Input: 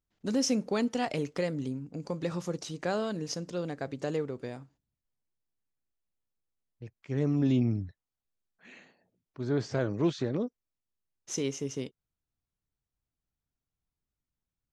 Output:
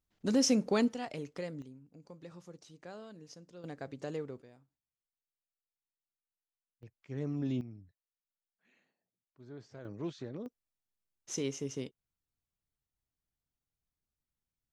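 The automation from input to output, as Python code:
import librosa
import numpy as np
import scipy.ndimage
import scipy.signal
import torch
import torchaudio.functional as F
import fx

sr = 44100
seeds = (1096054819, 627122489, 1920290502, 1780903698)

y = fx.gain(x, sr, db=fx.steps((0.0, 0.5), (0.93, -9.0), (1.62, -17.0), (3.64, -7.0), (4.42, -18.5), (6.83, -8.5), (7.61, -19.5), (9.85, -11.5), (10.46, -3.5)))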